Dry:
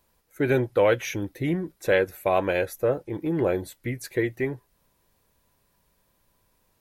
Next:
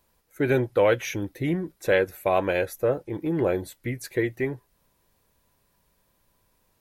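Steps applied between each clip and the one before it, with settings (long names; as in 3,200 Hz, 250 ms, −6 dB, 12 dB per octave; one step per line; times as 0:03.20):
no processing that can be heard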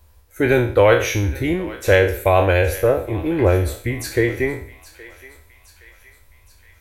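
peak hold with a decay on every bin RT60 0.47 s
low shelf with overshoot 110 Hz +10.5 dB, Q 3
feedback echo with a high-pass in the loop 819 ms, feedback 61%, high-pass 1,200 Hz, level −15.5 dB
level +6.5 dB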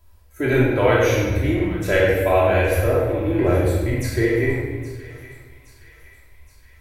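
rectangular room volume 1,100 cubic metres, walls mixed, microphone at 2.9 metres
level −7.5 dB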